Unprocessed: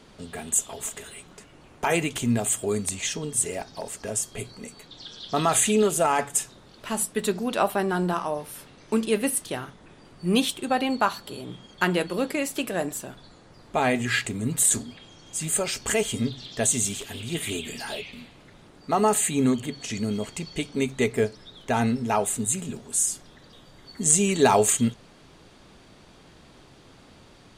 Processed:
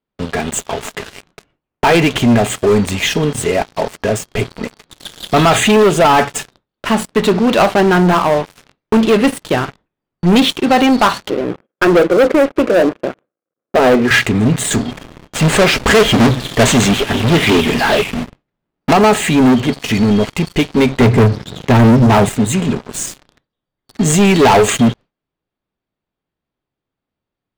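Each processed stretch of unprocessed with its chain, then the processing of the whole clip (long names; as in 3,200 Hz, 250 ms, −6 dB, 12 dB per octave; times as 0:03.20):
0:11.30–0:14.11: centre clipping without the shift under −47 dBFS + loudspeaker in its box 220–2,000 Hz, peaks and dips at 340 Hz +5 dB, 520 Hz +9 dB, 910 Hz −9 dB, 1,900 Hz −7 dB
0:14.91–0:18.93: each half-wave held at its own peak + parametric band 95 Hz −8.5 dB 0.25 octaves
0:21.00–0:22.29: high-pass filter 85 Hz 24 dB per octave + bass and treble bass +14 dB, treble +2 dB + mains-hum notches 50/100/150 Hz
whole clip: noise gate with hold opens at −38 dBFS; low-pass filter 3,300 Hz 12 dB per octave; leveller curve on the samples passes 5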